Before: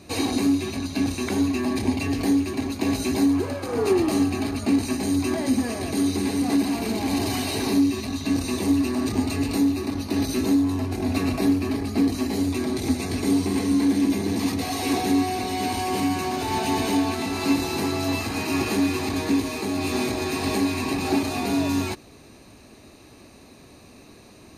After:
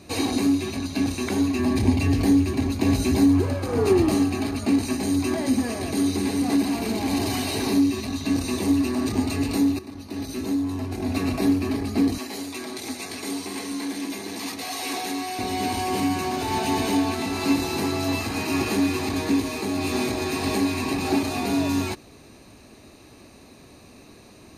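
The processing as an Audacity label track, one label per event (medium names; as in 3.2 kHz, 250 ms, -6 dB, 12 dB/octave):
1.590000	4.150000	peaking EQ 67 Hz +9.5 dB 2.7 oct
9.790000	11.490000	fade in, from -12.5 dB
12.180000	15.390000	high-pass 870 Hz 6 dB/octave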